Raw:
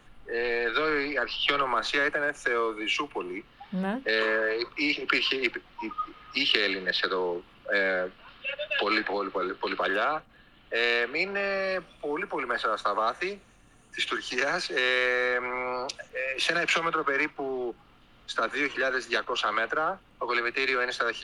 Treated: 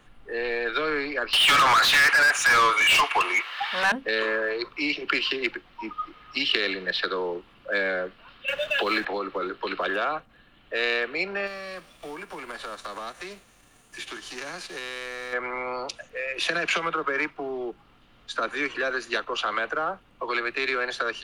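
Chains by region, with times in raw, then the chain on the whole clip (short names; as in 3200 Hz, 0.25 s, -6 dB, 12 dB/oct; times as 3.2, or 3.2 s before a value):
1.33–3.92 HPF 1100 Hz + overdrive pedal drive 32 dB, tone 4200 Hz, clips at -11 dBFS
8.48–9.05 G.711 law mismatch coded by mu + three-band squash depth 70%
11.46–15.32 spectral whitening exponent 0.6 + compressor 2:1, threshold -39 dBFS
whole clip: dry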